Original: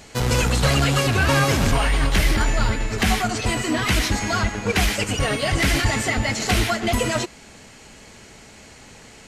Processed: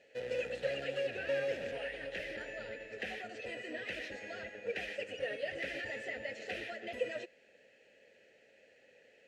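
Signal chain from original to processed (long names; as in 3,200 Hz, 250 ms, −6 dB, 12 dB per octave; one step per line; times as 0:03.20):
formant filter e
level −6 dB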